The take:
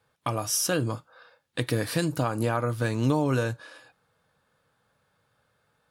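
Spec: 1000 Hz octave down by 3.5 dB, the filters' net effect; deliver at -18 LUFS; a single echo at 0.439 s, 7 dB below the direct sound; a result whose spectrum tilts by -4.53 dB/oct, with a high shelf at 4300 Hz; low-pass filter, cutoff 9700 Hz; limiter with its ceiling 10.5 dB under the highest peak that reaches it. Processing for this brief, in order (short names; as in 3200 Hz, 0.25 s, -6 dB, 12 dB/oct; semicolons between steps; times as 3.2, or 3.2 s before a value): LPF 9700 Hz; bell 1000 Hz -5 dB; high shelf 4300 Hz +7 dB; limiter -22.5 dBFS; echo 0.439 s -7 dB; gain +15 dB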